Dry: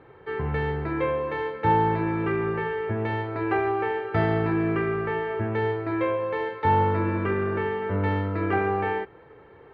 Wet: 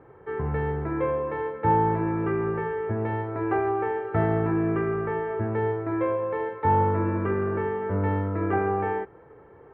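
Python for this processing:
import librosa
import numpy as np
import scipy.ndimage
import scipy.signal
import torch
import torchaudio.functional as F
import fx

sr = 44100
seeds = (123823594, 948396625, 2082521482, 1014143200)

y = scipy.signal.sosfilt(scipy.signal.butter(2, 1500.0, 'lowpass', fs=sr, output='sos'), x)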